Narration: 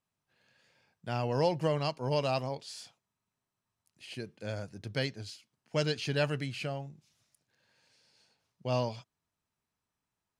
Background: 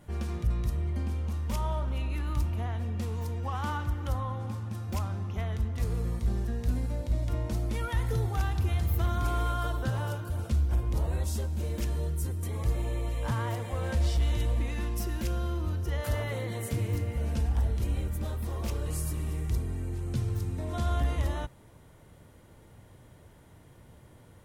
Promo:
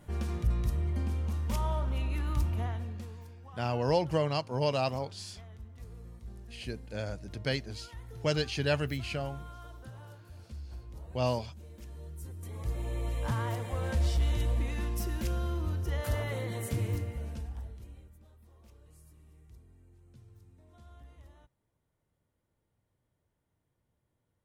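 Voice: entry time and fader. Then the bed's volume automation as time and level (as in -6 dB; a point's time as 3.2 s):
2.50 s, +1.0 dB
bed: 2.65 s -0.5 dB
3.35 s -17 dB
11.78 s -17 dB
13.08 s -1.5 dB
16.89 s -1.5 dB
18.24 s -25.5 dB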